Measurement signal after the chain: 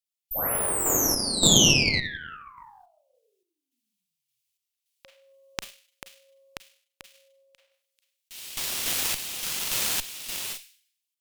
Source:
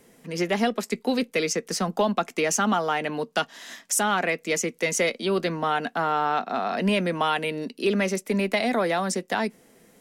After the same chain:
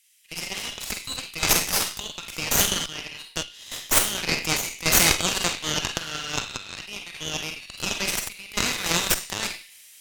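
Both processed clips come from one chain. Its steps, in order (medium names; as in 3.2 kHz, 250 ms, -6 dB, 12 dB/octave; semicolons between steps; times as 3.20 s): Chebyshev high-pass 2.7 kHz, order 3; in parallel at 0 dB: compressor with a negative ratio -41 dBFS, ratio -1; on the sum: Schroeder reverb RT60 0.55 s, combs from 33 ms, DRR 0.5 dB; random-step tremolo 3.5 Hz, depth 75%; Chebyshev shaper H 5 -11 dB, 7 -13 dB, 8 -8 dB, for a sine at -8 dBFS; trim +4 dB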